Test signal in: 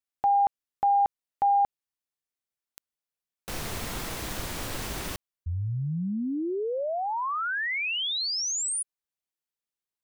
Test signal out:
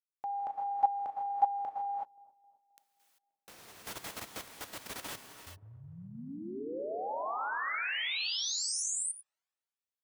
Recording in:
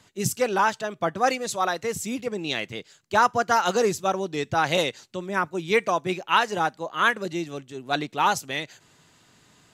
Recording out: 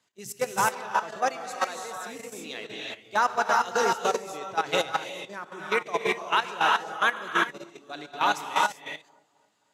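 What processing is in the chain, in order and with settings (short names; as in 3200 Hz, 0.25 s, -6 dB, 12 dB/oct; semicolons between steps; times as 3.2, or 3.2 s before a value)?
non-linear reverb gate 0.41 s rising, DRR -1 dB; level quantiser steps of 10 dB; HPF 380 Hz 6 dB/oct; on a send: dark delay 0.264 s, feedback 47%, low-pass 780 Hz, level -15 dB; on the sum: upward expander 1.5:1, over -44 dBFS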